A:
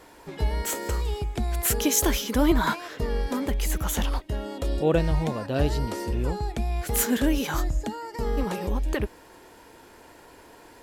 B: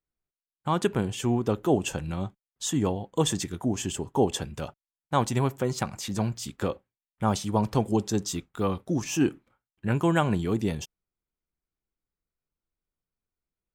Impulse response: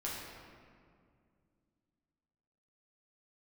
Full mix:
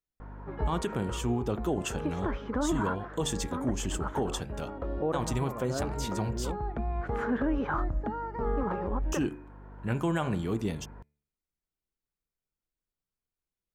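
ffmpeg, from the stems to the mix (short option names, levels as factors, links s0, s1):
-filter_complex "[0:a]lowpass=f=1300:t=q:w=2.4,equalizer=f=380:w=0.52:g=3,aeval=exprs='val(0)+0.0141*(sin(2*PI*50*n/s)+sin(2*PI*2*50*n/s)/2+sin(2*PI*3*50*n/s)/3+sin(2*PI*4*50*n/s)/4+sin(2*PI*5*50*n/s)/5)':c=same,adelay=200,volume=0.531[s0];[1:a]bandreject=f=73.13:t=h:w=4,bandreject=f=146.26:t=h:w=4,bandreject=f=219.39:t=h:w=4,bandreject=f=292.52:t=h:w=4,bandreject=f=365.65:t=h:w=4,bandreject=f=438.78:t=h:w=4,bandreject=f=511.91:t=h:w=4,bandreject=f=585.04:t=h:w=4,bandreject=f=658.17:t=h:w=4,bandreject=f=731.3:t=h:w=4,bandreject=f=804.43:t=h:w=4,bandreject=f=877.56:t=h:w=4,bandreject=f=950.69:t=h:w=4,bandreject=f=1023.82:t=h:w=4,bandreject=f=1096.95:t=h:w=4,bandreject=f=1170.08:t=h:w=4,bandreject=f=1243.21:t=h:w=4,bandreject=f=1316.34:t=h:w=4,bandreject=f=1389.47:t=h:w=4,bandreject=f=1462.6:t=h:w=4,bandreject=f=1535.73:t=h:w=4,bandreject=f=1608.86:t=h:w=4,bandreject=f=1681.99:t=h:w=4,bandreject=f=1755.12:t=h:w=4,bandreject=f=1828.25:t=h:w=4,bandreject=f=1901.38:t=h:w=4,bandreject=f=1974.51:t=h:w=4,bandreject=f=2047.64:t=h:w=4,bandreject=f=2120.77:t=h:w=4,bandreject=f=2193.9:t=h:w=4,bandreject=f=2267.03:t=h:w=4,bandreject=f=2340.16:t=h:w=4,bandreject=f=2413.29:t=h:w=4,bandreject=f=2486.42:t=h:w=4,volume=0.668,asplit=3[s1][s2][s3];[s1]atrim=end=6.56,asetpts=PTS-STARTPTS,afade=t=out:st=6.556:d=0.004:c=hsin[s4];[s2]atrim=start=6.56:end=9.12,asetpts=PTS-STARTPTS,volume=0[s5];[s3]atrim=start=9.12,asetpts=PTS-STARTPTS,afade=t=in:d=0.004:c=hsin[s6];[s4][s5][s6]concat=n=3:v=0:a=1,asplit=2[s7][s8];[s8]apad=whole_len=486186[s9];[s0][s9]sidechaincompress=threshold=0.0251:ratio=3:attack=26:release=1100[s10];[s10][s7]amix=inputs=2:normalize=0,alimiter=limit=0.1:level=0:latency=1:release=53"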